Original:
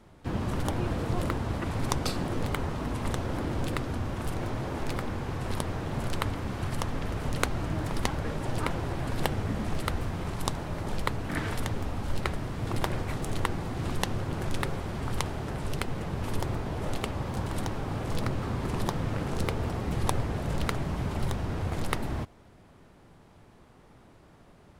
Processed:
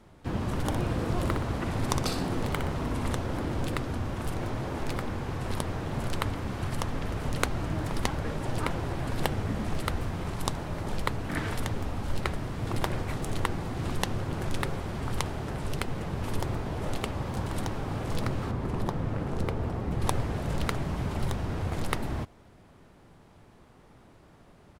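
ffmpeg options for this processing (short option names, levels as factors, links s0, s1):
-filter_complex "[0:a]asplit=3[s0][s1][s2];[s0]afade=t=out:st=0.63:d=0.02[s3];[s1]aecho=1:1:61|122|183|244|305:0.447|0.201|0.0905|0.0407|0.0183,afade=t=in:st=0.63:d=0.02,afade=t=out:st=3.15:d=0.02[s4];[s2]afade=t=in:st=3.15:d=0.02[s5];[s3][s4][s5]amix=inputs=3:normalize=0,asettb=1/sr,asplit=3[s6][s7][s8];[s6]atrim=end=18.514[s9];[s7]atrim=start=18.51:end=20.02,asetpts=PTS-STARTPTS,afade=t=in:d=0.004:c=qsin,afade=t=out:st=1.506:d=0.004:c=qsin,highshelf=f=2100:g=-9.5[s10];[s8]atrim=start=20.016[s11];[s9][s10]acrossfade=d=0.004:c1=hsin:c2=qsin[s12];[s12][s11]acrossfade=d=0.004:c1=qsin:c2=hsin"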